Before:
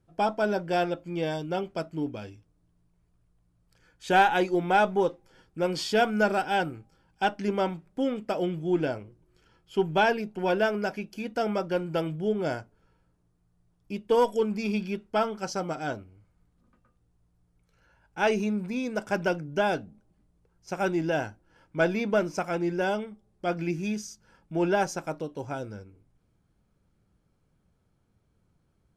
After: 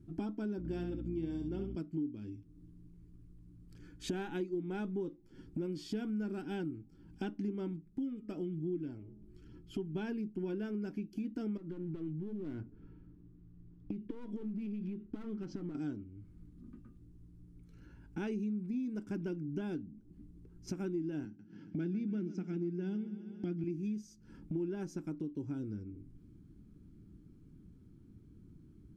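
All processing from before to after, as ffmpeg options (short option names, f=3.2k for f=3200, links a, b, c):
-filter_complex "[0:a]asettb=1/sr,asplit=3[a][b][c];[a]atrim=end=0.584[d];[b]atrim=start=0.58:end=1.76,asetpts=PTS-STARTPTS,afade=t=in:d=0.004:c=qsin,afade=t=out:st=1.176:d=0.004:c=qsin,aeval=exprs='val(0)+0.00891*(sin(2*PI*60*n/s)+sin(2*PI*2*60*n/s)/2+sin(2*PI*3*60*n/s)/3+sin(2*PI*4*60*n/s)/4+sin(2*PI*5*60*n/s)/5)':c=same,aecho=1:1:67|134|201:0.501|0.0902|0.0162,atrim=end_sample=52038[e];[c]atrim=start=1.756[f];[d][e]acrossfade=d=0.004:c1=hsin:c2=qsin[g];[g][f]acrossfade=d=0.004:c1=qsin:c2=hsin,asettb=1/sr,asplit=3[h][i][j];[h]atrim=end=7.764[k];[i]atrim=start=7.76:end=9.95,asetpts=PTS-STARTPTS,afade=t=in:d=0.004:c=qsin,afade=t=out:st=2.186:d=0.004:c=qsin,flanger=delay=0:depth=2.1:regen=55:speed=1.1:shape=triangular,bandreject=f=209.5:t=h:w=4,bandreject=f=419:t=h:w=4,bandreject=f=628.5:t=h:w=4,bandreject=f=838:t=h:w=4,bandreject=f=1.0475k:t=h:w=4,bandreject=f=1.257k:t=h:w=4[l];[j]atrim=start=9.946[m];[k][l]acrossfade=d=0.004:c1=hsin:c2=qsin[n];[n][m]acrossfade=d=0.004:c1=qsin:c2=hsin,asettb=1/sr,asplit=3[o][p][q];[o]atrim=end=11.574[r];[p]atrim=start=11.57:end=15.75,asetpts=PTS-STARTPTS,afade=t=in:d=0.004:c=qsin,afade=t=out:st=4.176:d=0.004:c=qsin,lowpass=2.9k,aeval=exprs='clip(val(0),-1,0.02)':c=same,acompressor=threshold=-37dB:ratio=5:attack=3.2:release=140:knee=1:detection=peak[s];[q]atrim=start=15.746[t];[r][s]acrossfade=d=0.004:c1=hsin:c2=qsin[u];[u][t]acrossfade=d=0.004:c1=qsin:c2=hsin,asettb=1/sr,asplit=3[v][w][x];[v]atrim=end=21.254[y];[w]atrim=start=21.25:end=23.64,asetpts=PTS-STARTPTS,afade=t=in:d=0.004:c=qsin,afade=t=out:st=2.386:d=0.004:c=qsin,highpass=f=130:w=0.5412,highpass=f=130:w=1.3066,equalizer=f=190:t=q:w=4:g=7,equalizer=f=600:t=q:w=4:g=-7,equalizer=f=1.1k:t=q:w=4:g=-10,lowpass=f=6.5k:w=0.5412,lowpass=f=6.5k:w=1.3066,aecho=1:1:138|276|414|552:0.158|0.0792|0.0396|0.0198,atrim=end_sample=105399[z];[x]atrim=start=23.636[aa];[y][z]acrossfade=d=0.004:c1=hsin:c2=qsin[ab];[ab][aa]acrossfade=d=0.004:c1=qsin:c2=hsin,lowshelf=f=440:t=q:w=3:g=13,bandreject=f=500:w=12,acompressor=threshold=-38dB:ratio=4,volume=-2dB"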